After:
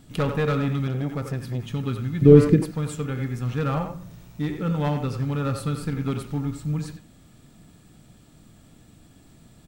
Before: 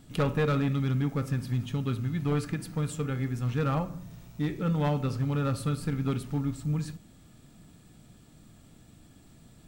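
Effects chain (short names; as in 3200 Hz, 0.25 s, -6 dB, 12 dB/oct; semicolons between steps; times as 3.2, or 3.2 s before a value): 2.21–2.62 resonant low shelf 630 Hz +11 dB, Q 3; speakerphone echo 90 ms, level -7 dB; 0.87–1.68 core saturation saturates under 240 Hz; gain +2.5 dB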